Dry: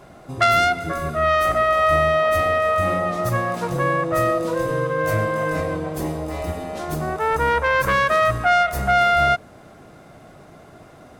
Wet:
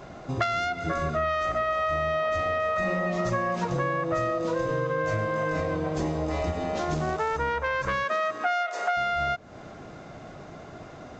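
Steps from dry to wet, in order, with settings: 2.76–3.65 s: comb 5.3 ms, depth 89%; 8.03–8.96 s: high-pass 170 Hz -> 510 Hz 24 dB/octave; compression 6:1, threshold -26 dBFS, peak gain reduction 14 dB; 6.91–7.37 s: short-mantissa float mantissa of 2-bit; resampled via 16 kHz; trim +2 dB

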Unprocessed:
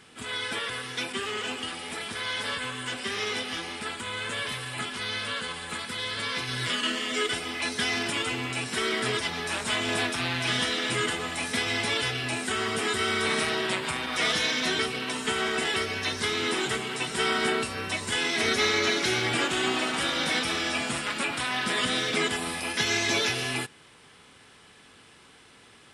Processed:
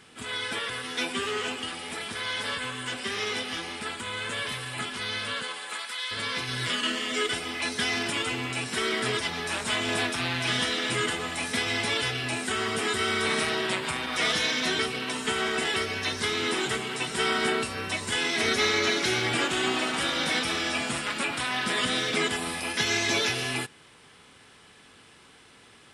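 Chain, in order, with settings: 0.83–1.49 s: doubling 12 ms -3 dB; 5.42–6.10 s: high-pass 290 Hz -> 1.1 kHz 12 dB/octave

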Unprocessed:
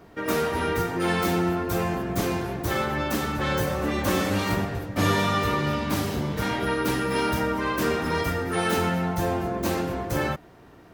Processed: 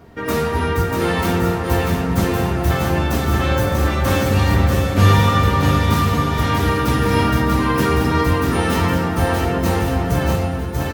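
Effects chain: peaking EQ 89 Hz +14 dB 0.97 oct; bouncing-ball echo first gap 640 ms, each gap 0.8×, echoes 5; reverberation, pre-delay 4 ms, DRR 7 dB; trim +2.5 dB

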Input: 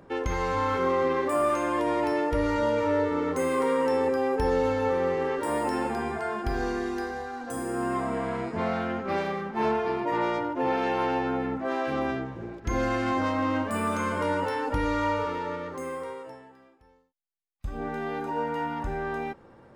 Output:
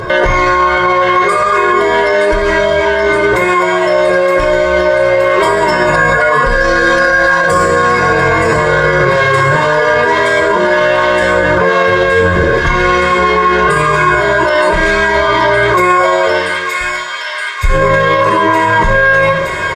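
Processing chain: formant-preserving pitch shift -6.5 st; compressor with a negative ratio -34 dBFS, ratio -1; peaking EQ 2.2 kHz +7 dB 2.8 oct; band-stop 2.6 kHz, Q 5.8; comb 1.9 ms, depth 92%; feedback echo behind a high-pass 920 ms, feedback 80%, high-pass 2.1 kHz, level -7.5 dB; on a send at -2 dB: reverberation RT60 0.40 s, pre-delay 3 ms; on the sum: loudness maximiser +22.5 dB; trim -1 dB

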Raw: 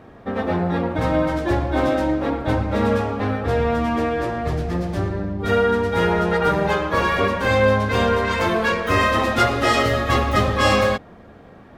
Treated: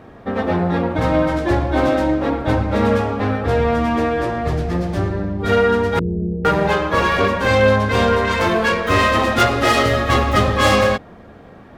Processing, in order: self-modulated delay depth 0.098 ms; 5.99–6.45 s: inverse Chebyshev low-pass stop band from 1.1 kHz, stop band 60 dB; trim +3 dB

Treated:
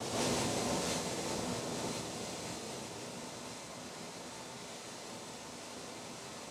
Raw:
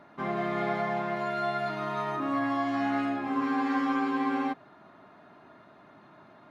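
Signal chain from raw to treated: Paulstretch 16×, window 1.00 s, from 4.71 s; noise-vocoded speech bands 2; dynamic bell 1.1 kHz, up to -5 dB, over -56 dBFS, Q 0.97; gated-style reverb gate 210 ms rising, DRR -7.5 dB

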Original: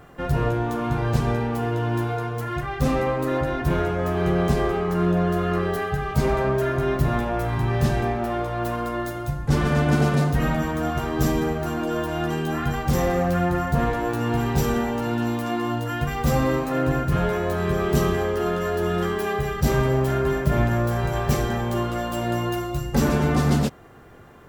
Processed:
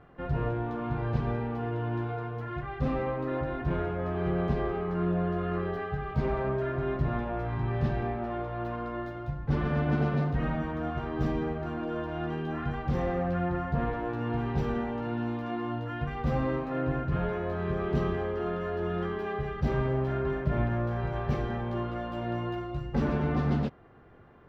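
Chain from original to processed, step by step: distance through air 300 m; trim -7 dB

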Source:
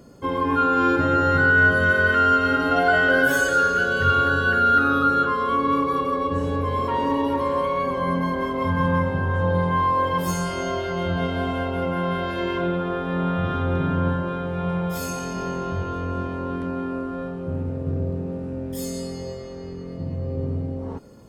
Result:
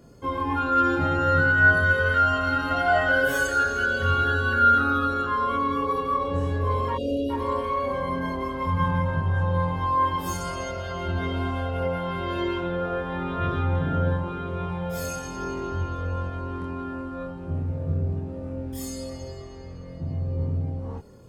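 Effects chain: spectral selection erased 6.95–7.30 s, 750–2400 Hz; chorus voices 6, 0.31 Hz, delay 25 ms, depth 1.4 ms

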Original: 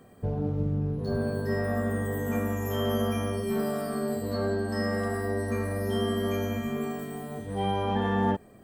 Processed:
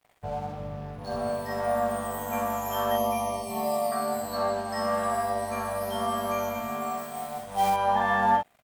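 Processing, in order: resonant low shelf 520 Hz -10.5 dB, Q 3; 6.97–7.70 s: short-mantissa float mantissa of 2-bit; crossover distortion -52.5 dBFS; 2.91–3.92 s: Butterworth band-stop 1.5 kHz, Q 1.7; early reflections 46 ms -3.5 dB, 63 ms -5 dB; trim +3 dB

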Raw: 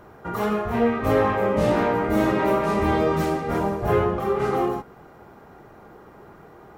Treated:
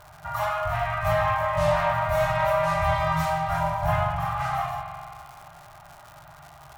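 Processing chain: FFT band-reject 170–580 Hz; crackle 200 per s -37 dBFS; spring tank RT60 2.4 s, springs 43 ms, chirp 20 ms, DRR 4 dB

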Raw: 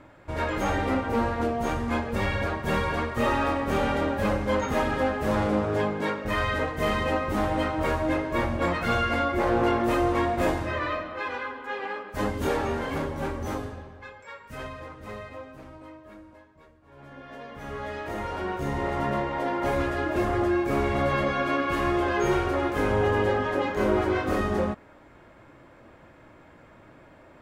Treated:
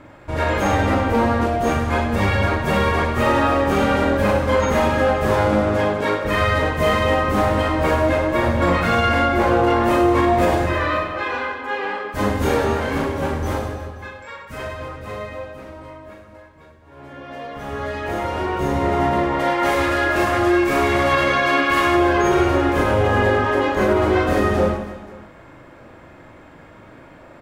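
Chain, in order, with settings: 19.39–21.95 s: tilt shelf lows -5.5 dB, about 760 Hz; reverse bouncing-ball echo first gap 40 ms, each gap 1.5×, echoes 5; loudness maximiser +12.5 dB; trim -6.5 dB

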